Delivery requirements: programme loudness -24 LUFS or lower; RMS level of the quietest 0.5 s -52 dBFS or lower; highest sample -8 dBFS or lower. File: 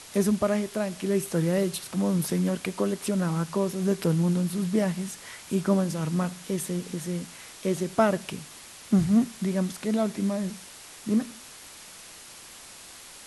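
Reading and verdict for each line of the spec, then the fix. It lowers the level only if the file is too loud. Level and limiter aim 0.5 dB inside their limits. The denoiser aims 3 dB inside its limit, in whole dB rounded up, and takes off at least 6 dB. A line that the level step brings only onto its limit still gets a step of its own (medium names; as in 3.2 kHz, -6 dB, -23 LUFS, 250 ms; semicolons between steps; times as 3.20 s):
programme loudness -27.0 LUFS: pass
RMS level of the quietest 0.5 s -46 dBFS: fail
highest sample -8.5 dBFS: pass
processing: noise reduction 9 dB, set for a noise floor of -46 dBFS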